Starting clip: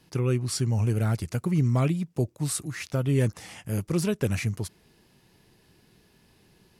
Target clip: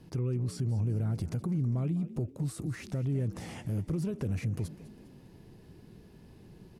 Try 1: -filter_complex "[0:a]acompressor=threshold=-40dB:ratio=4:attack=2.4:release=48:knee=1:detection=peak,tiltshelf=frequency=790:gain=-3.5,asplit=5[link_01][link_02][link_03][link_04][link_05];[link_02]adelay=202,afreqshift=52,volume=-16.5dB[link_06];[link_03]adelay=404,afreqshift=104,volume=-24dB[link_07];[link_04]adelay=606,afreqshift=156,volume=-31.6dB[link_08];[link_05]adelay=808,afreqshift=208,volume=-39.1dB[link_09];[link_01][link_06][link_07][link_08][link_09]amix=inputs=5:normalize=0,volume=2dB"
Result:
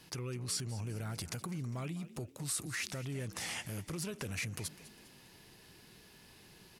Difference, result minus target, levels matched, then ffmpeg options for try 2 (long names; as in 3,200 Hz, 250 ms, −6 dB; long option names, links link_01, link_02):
1,000 Hz band +8.5 dB
-filter_complex "[0:a]acompressor=threshold=-40dB:ratio=4:attack=2.4:release=48:knee=1:detection=peak,tiltshelf=frequency=790:gain=7.5,asplit=5[link_01][link_02][link_03][link_04][link_05];[link_02]adelay=202,afreqshift=52,volume=-16.5dB[link_06];[link_03]adelay=404,afreqshift=104,volume=-24dB[link_07];[link_04]adelay=606,afreqshift=156,volume=-31.6dB[link_08];[link_05]adelay=808,afreqshift=208,volume=-39.1dB[link_09];[link_01][link_06][link_07][link_08][link_09]amix=inputs=5:normalize=0,volume=2dB"